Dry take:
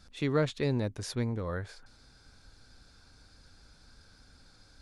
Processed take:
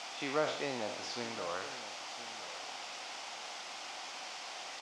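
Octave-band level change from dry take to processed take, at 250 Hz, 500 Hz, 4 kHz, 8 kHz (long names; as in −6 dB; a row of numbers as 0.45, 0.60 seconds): −10.5, −4.0, +6.0, +5.0 decibels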